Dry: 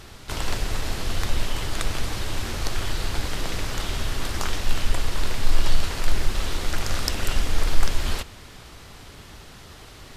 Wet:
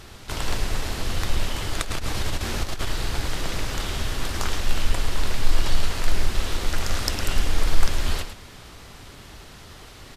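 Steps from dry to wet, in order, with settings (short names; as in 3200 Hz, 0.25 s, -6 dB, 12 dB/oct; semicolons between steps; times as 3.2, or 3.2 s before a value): 1.8–2.87 negative-ratio compressor -24 dBFS, ratio -0.5; on a send: echo 0.108 s -9.5 dB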